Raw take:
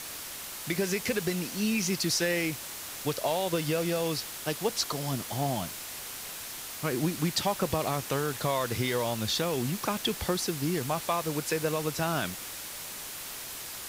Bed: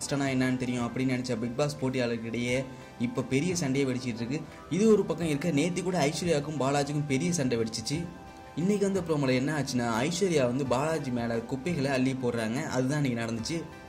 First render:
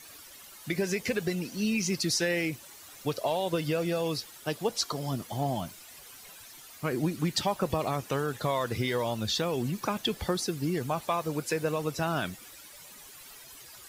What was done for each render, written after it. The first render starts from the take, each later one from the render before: denoiser 13 dB, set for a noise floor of -40 dBFS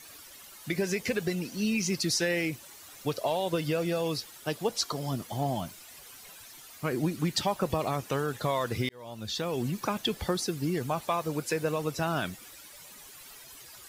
8.89–9.63 fade in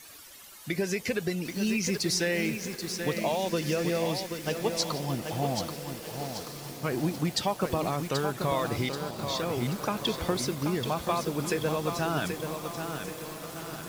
diffused feedback echo 1.656 s, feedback 41%, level -12 dB; lo-fi delay 0.782 s, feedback 55%, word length 7-bit, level -6 dB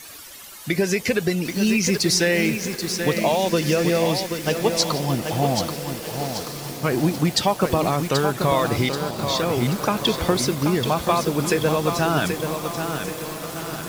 gain +8.5 dB

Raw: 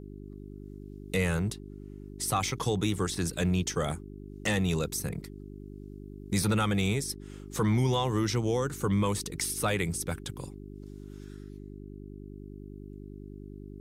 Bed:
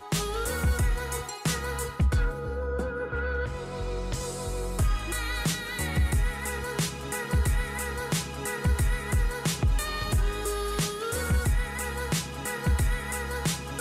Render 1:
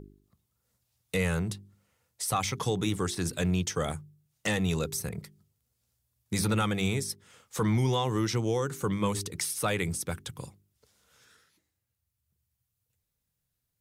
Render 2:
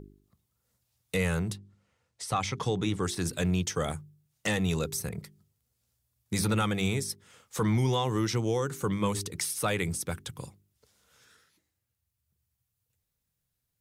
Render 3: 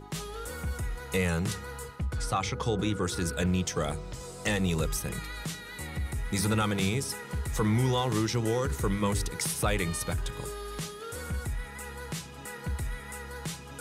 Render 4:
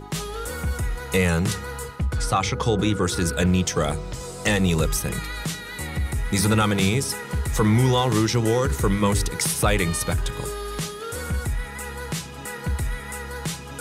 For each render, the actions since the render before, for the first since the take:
de-hum 50 Hz, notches 8
1.57–3.03 air absorption 61 m
add bed -8.5 dB
gain +7.5 dB

